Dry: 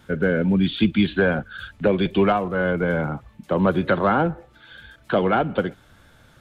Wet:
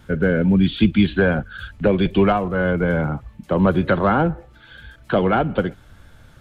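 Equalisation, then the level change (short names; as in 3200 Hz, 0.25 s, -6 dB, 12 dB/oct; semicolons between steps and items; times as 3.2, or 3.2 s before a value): low shelf 98 Hz +11.5 dB; notch 3600 Hz, Q 28; +1.0 dB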